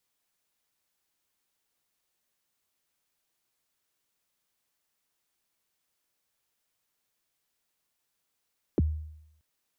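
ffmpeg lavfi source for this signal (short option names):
-f lavfi -i "aevalsrc='0.119*pow(10,-3*t/0.79)*sin(2*PI*(470*0.027/log(77/470)*(exp(log(77/470)*min(t,0.027)/0.027)-1)+77*max(t-0.027,0)))':d=0.63:s=44100"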